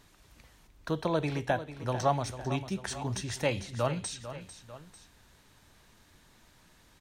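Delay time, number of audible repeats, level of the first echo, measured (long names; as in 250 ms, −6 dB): 447 ms, 2, −12.5 dB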